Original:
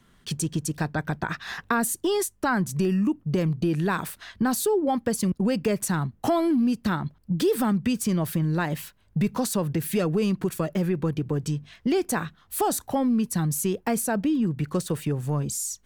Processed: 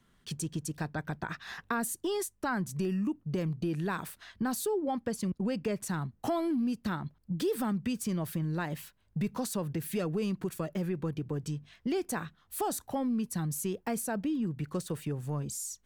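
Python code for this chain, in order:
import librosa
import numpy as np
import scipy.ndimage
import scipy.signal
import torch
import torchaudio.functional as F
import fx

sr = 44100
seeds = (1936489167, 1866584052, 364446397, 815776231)

y = fx.high_shelf(x, sr, hz=10000.0, db=-9.0, at=(4.87, 5.86))
y = F.gain(torch.from_numpy(y), -8.0).numpy()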